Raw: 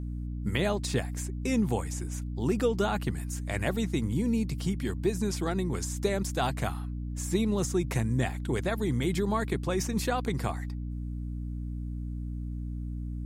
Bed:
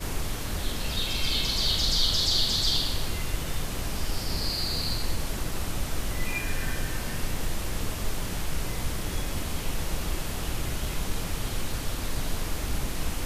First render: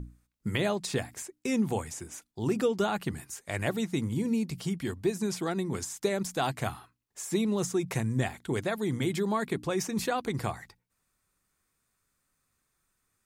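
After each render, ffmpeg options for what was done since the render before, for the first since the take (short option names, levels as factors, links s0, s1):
-af "bandreject=f=60:t=h:w=6,bandreject=f=120:t=h:w=6,bandreject=f=180:t=h:w=6,bandreject=f=240:t=h:w=6,bandreject=f=300:t=h:w=6"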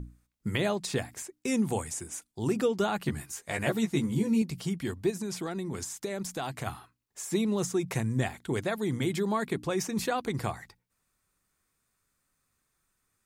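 -filter_complex "[0:a]asettb=1/sr,asplit=3[s0][s1][s2];[s0]atrim=end=1.474[s3];[s1]atrim=start=1.47:end=2.52,asetpts=PTS-STARTPTS,afade=t=in:d=0.004:c=qsin,afade=t=out:st=1.046:d=0.004:c=qsin,equalizer=f=9000:t=o:w=0.77:g=7[s4];[s2]atrim=start=2.516[s5];[s3][s4]acrossfade=d=0.004:c1=hsin:c2=qsin[s6];[s6][s5]acrossfade=d=0.004:c1=qsin:c2=hsin,asettb=1/sr,asplit=3[s7][s8][s9];[s7]atrim=end=3.044[s10];[s8]atrim=start=3.04:end=4.42,asetpts=PTS-STARTPTS,afade=t=in:d=0.004:c=qsin,afade=t=out:st=1.376:d=0.004:c=qsin,asplit=2[s11][s12];[s12]adelay=14,volume=0.75[s13];[s11][s13]amix=inputs=2:normalize=0,atrim=end_sample=60858[s14];[s9]atrim=start=4.416[s15];[s10][s14]acrossfade=d=0.004:c1=hsin:c2=qsin[s16];[s16][s15]acrossfade=d=0.004:c1=qsin:c2=hsin,asplit=3[s17][s18][s19];[s17]afade=t=out:st=5.1:d=0.02[s20];[s18]acompressor=threshold=0.0282:ratio=3:attack=3.2:release=140:knee=1:detection=peak,afade=t=in:st=5.1:d=0.02,afade=t=out:st=6.66:d=0.02[s21];[s19]afade=t=in:st=6.66:d=0.02[s22];[s20][s21][s22]amix=inputs=3:normalize=0"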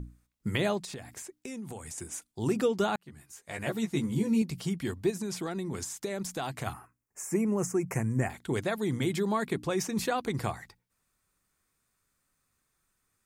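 -filter_complex "[0:a]asettb=1/sr,asplit=3[s0][s1][s2];[s0]atrim=end=0.784[s3];[s1]atrim=start=0.78:end=1.98,asetpts=PTS-STARTPTS,afade=t=in:d=0.004:c=qsin,afade=t=out:st=1.196:d=0.004:c=qsin,acompressor=threshold=0.0126:ratio=5:attack=3.2:release=140:knee=1:detection=peak[s4];[s2]atrim=start=1.976[s5];[s3][s4]acrossfade=d=0.004:c1=hsin:c2=qsin[s6];[s6][s5]acrossfade=d=0.004:c1=qsin:c2=hsin,asettb=1/sr,asplit=3[s7][s8][s9];[s7]atrim=end=6.734[s10];[s8]atrim=start=6.73:end=8.3,asetpts=PTS-STARTPTS,afade=t=in:d=0.004:c=qsin,afade=t=out:st=1.566:d=0.004:c=qsin,asuperstop=centerf=3700:order=4:qfactor=1.1[s11];[s9]atrim=start=8.296[s12];[s10][s11]acrossfade=d=0.004:c1=hsin:c2=qsin[s13];[s13][s12]acrossfade=d=0.004:c1=qsin:c2=hsin,asplit=2[s14][s15];[s14]atrim=end=2.96,asetpts=PTS-STARTPTS,afade=t=out:st=2.956:d=0.004:c=hsin[s16];[s15]atrim=start=2.96,asetpts=PTS-STARTPTS,afade=t=in:d=1.71:c=qsin[s17];[s16][s17]concat=n=2:v=0:a=1"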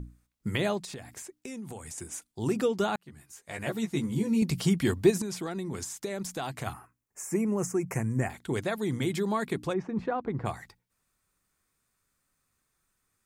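-filter_complex "[0:a]asettb=1/sr,asplit=3[s0][s1][s2];[s0]atrim=end=4.424[s3];[s1]atrim=start=4.42:end=5.22,asetpts=PTS-STARTPTS,afade=t=in:d=0.004:c=qsin,afade=t=out:st=0.796:d=0.004:c=qsin,acontrast=85[s4];[s2]atrim=start=5.216[s5];[s3][s4]acrossfade=d=0.004:c1=hsin:c2=qsin[s6];[s6][s5]acrossfade=d=0.004:c1=qsin:c2=hsin,asplit=3[s7][s8][s9];[s7]afade=t=out:st=9.72:d=0.02[s10];[s8]lowpass=1300,afade=t=in:st=9.72:d=0.02,afade=t=out:st=10.45:d=0.02[s11];[s9]afade=t=in:st=10.45:d=0.02[s12];[s10][s11][s12]amix=inputs=3:normalize=0"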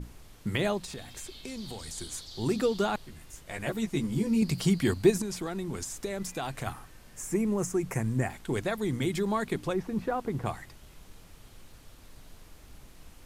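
-filter_complex "[1:a]volume=0.0841[s0];[0:a][s0]amix=inputs=2:normalize=0"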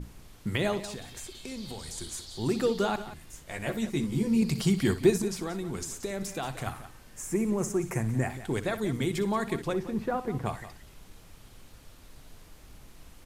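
-af "aecho=1:1:61|179:0.211|0.2"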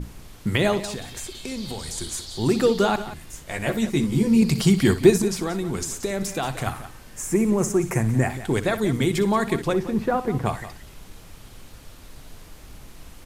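-af "volume=2.37"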